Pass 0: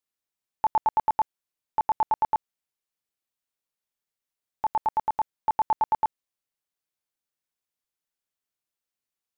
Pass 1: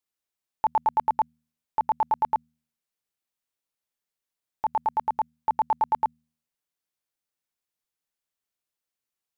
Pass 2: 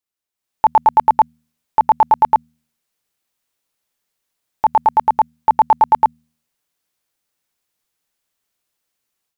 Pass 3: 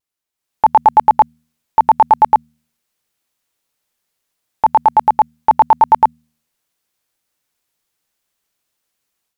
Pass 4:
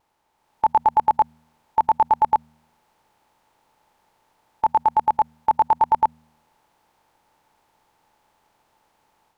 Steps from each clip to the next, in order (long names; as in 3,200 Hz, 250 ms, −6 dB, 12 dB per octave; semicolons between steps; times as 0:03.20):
hum removal 78.42 Hz, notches 3
automatic gain control gain up to 12 dB
pitch vibrato 0.73 Hz 24 cents; level +2.5 dB
compressor on every frequency bin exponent 0.6; level −9 dB